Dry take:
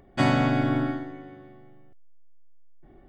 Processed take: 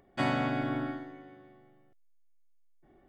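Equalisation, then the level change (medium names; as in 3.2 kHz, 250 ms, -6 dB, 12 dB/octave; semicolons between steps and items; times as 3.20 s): dynamic bell 6.4 kHz, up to -6 dB, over -53 dBFS, Q 1.3; bass shelf 100 Hz -7.5 dB; bass shelf 430 Hz -3 dB; -5.0 dB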